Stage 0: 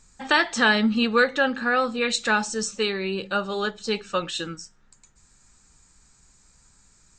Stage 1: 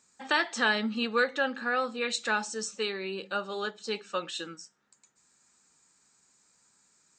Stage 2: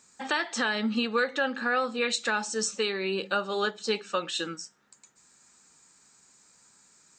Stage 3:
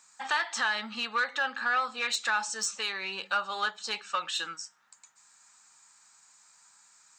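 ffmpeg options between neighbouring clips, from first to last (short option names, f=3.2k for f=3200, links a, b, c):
-af "highpass=240,volume=-6.5dB"
-af "alimiter=limit=-23dB:level=0:latency=1:release=305,volume=6.5dB"
-af "asoftclip=type=tanh:threshold=-18.5dB,lowshelf=f=610:t=q:w=1.5:g=-13"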